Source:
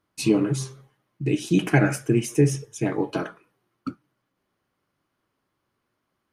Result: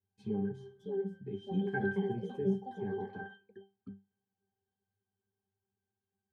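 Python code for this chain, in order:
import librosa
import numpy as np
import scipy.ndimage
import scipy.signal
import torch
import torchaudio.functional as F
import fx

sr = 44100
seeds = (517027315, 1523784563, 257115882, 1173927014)

y = fx.echo_pitch(x, sr, ms=660, semitones=5, count=3, db_per_echo=-6.0)
y = fx.octave_resonator(y, sr, note='G', decay_s=0.24)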